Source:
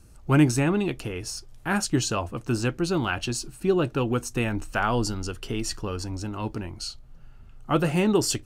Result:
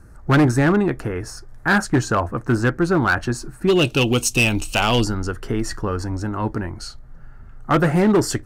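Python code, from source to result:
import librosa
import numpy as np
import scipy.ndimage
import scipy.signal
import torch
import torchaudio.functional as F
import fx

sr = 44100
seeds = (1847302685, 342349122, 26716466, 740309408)

y = fx.high_shelf_res(x, sr, hz=2200.0, db=fx.steps((0.0, -8.5), (3.67, 7.0), (5.03, -6.5)), q=3.0)
y = np.clip(10.0 ** (18.0 / 20.0) * y, -1.0, 1.0) / 10.0 ** (18.0 / 20.0)
y = y * 10.0 ** (7.0 / 20.0)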